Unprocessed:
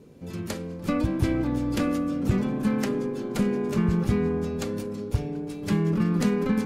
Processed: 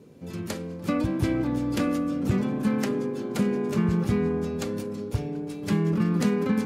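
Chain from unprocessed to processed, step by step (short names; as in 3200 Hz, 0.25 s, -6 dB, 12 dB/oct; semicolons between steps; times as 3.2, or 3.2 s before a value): HPF 81 Hz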